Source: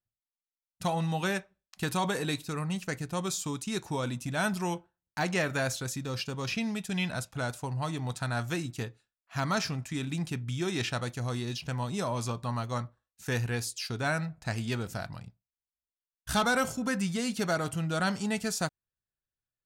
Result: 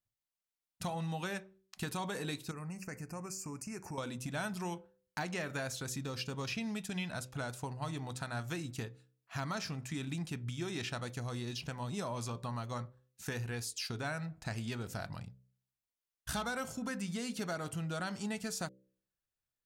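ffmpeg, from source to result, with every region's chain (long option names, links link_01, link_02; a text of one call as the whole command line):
ffmpeg -i in.wav -filter_complex "[0:a]asettb=1/sr,asplit=3[link_01][link_02][link_03];[link_01]atrim=end=2.514[link_04];[link_02]atrim=start=2.51:end=3.98,asetpts=PTS-STARTPTS,afade=type=in:duration=0.004:curve=qsin,afade=type=out:start_time=1.466:duration=0.004:curve=qsin,acompressor=threshold=-41dB:ratio=3:attack=3.2:release=140:knee=1:detection=peak,asuperstop=centerf=3500:order=8:qfactor=1.8[link_05];[link_03]atrim=start=3.976[link_06];[link_04][link_05]acrossfade=duration=0.004:curve1=hsin:curve2=qsin[link_07];[link_07][link_06]acrossfade=duration=0.004:curve1=qsin:curve2=hsin,acompressor=threshold=-36dB:ratio=4,bandreject=frequency=63.68:width_type=h:width=4,bandreject=frequency=127.36:width_type=h:width=4,bandreject=frequency=191.04:width_type=h:width=4,bandreject=frequency=254.72:width_type=h:width=4,bandreject=frequency=318.4:width_type=h:width=4,bandreject=frequency=382.08:width_type=h:width=4,bandreject=frequency=445.76:width_type=h:width=4,bandreject=frequency=509.44:width_type=h:width=4,bandreject=frequency=573.12:width_type=h:width=4" out.wav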